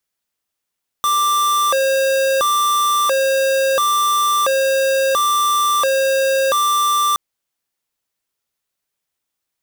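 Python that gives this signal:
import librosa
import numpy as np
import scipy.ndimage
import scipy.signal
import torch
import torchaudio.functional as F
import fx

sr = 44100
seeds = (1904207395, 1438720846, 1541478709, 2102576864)

y = fx.siren(sr, length_s=6.12, kind='hi-lo', low_hz=537.0, high_hz=1180.0, per_s=0.73, wave='square', level_db=-16.0)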